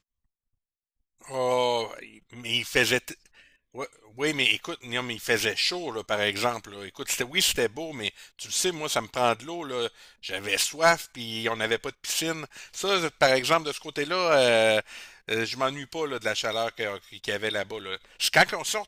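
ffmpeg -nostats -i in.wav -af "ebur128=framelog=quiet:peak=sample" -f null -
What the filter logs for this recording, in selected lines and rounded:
Integrated loudness:
  I:         -26.0 LUFS
  Threshold: -36.6 LUFS
Loudness range:
  LRA:         4.0 LU
  Threshold: -46.7 LUFS
  LRA low:   -28.4 LUFS
  LRA high:  -24.3 LUFS
Sample peak:
  Peak:       -7.6 dBFS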